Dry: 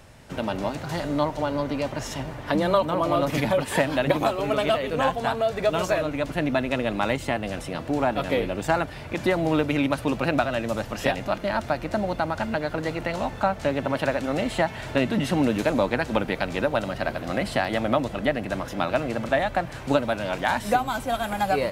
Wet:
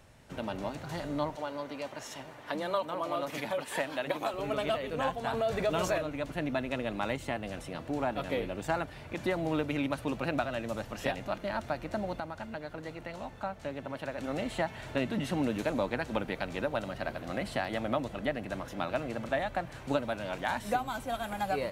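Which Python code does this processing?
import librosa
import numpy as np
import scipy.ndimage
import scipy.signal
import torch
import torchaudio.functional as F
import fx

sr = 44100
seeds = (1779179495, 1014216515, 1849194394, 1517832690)

y = fx.highpass(x, sr, hz=460.0, slope=6, at=(1.35, 4.34))
y = fx.env_flatten(y, sr, amount_pct=50, at=(5.33, 5.98))
y = fx.edit(y, sr, fx.clip_gain(start_s=12.2, length_s=1.98, db=-5.0), tone=tone)
y = fx.notch(y, sr, hz=5000.0, q=22.0)
y = F.gain(torch.from_numpy(y), -8.5).numpy()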